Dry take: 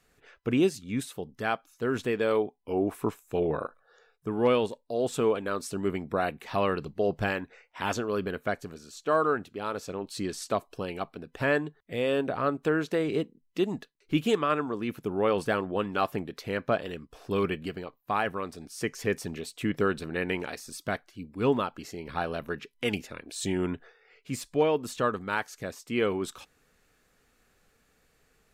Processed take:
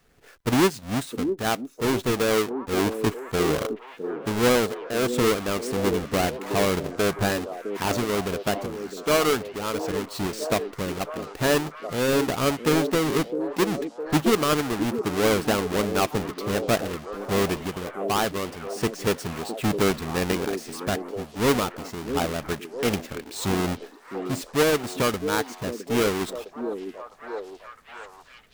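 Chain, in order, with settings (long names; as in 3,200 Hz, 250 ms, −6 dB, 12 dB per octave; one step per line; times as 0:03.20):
each half-wave held at its own peak
echo through a band-pass that steps 659 ms, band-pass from 330 Hz, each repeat 0.7 octaves, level −5.5 dB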